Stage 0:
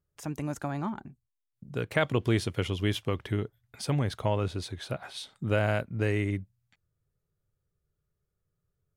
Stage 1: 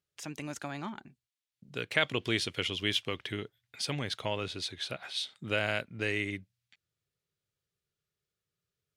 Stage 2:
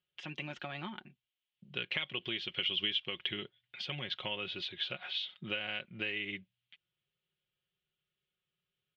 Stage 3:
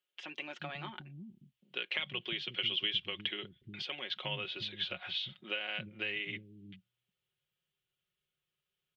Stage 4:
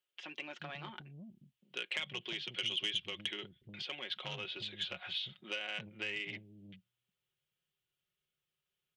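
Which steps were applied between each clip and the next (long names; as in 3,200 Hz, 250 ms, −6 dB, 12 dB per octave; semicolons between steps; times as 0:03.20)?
meter weighting curve D; level −5 dB
comb filter 5.5 ms, depth 58%; downward compressor 12 to 1, threshold −33 dBFS, peak gain reduction 13 dB; transistor ladder low-pass 3,400 Hz, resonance 65%; level +7 dB
multiband delay without the direct sound highs, lows 360 ms, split 250 Hz
saturating transformer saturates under 2,600 Hz; level −1.5 dB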